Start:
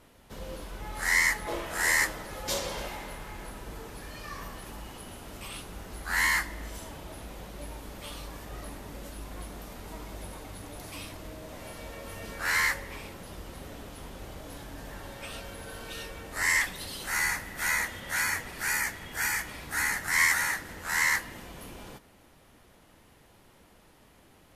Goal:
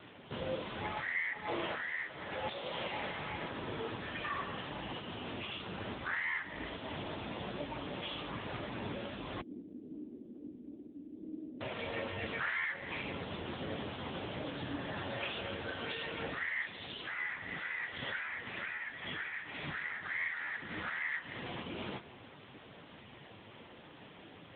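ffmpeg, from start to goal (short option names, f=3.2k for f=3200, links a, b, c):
-filter_complex "[0:a]aemphasis=mode=production:type=75fm,acompressor=threshold=-33dB:ratio=12,asoftclip=type=tanh:threshold=-33.5dB,flanger=delay=6.3:depth=2.9:regen=-62:speed=0.62:shape=triangular,asettb=1/sr,asplit=3[a][b][c];[a]atrim=end=9.414[d];[b]atrim=start=9.41:end=11.61,asetpts=PTS-STARTPTS,afade=t=in:d=0.004:c=qsin,afade=t=out:st=2.196:d=0.004:c=qsin,asuperpass=centerf=280:order=4:qfactor=2.3[e];[c]atrim=start=11.606[f];[d][e]acrossfade=d=0.004:c1=hsin:c2=qsin[g];[g][f]acrossfade=d=0.004:c1=qsin:c2=hsin,volume=13.5dB" -ar 8000 -c:a libopencore_amrnb -b:a 6700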